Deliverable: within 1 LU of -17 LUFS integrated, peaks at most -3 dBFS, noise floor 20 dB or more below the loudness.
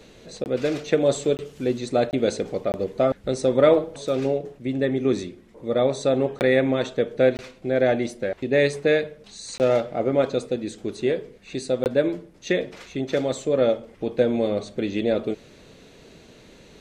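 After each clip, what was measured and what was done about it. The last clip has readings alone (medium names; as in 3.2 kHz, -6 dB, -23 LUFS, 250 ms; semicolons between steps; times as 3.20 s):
dropouts 8; longest dropout 19 ms; loudness -23.5 LUFS; peak level -5.0 dBFS; loudness target -17.0 LUFS
-> interpolate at 0.44/1.37/2.11/2.72/6.39/7.37/9.58/11.84 s, 19 ms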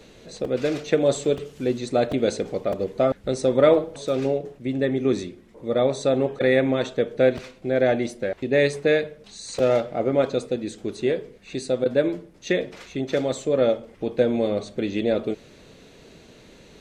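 dropouts 0; loudness -23.5 LUFS; peak level -5.0 dBFS; loudness target -17.0 LUFS
-> trim +6.5 dB; peak limiter -3 dBFS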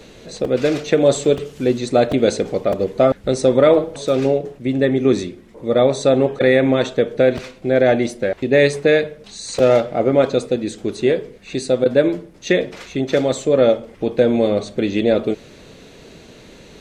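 loudness -17.5 LUFS; peak level -3.0 dBFS; noise floor -44 dBFS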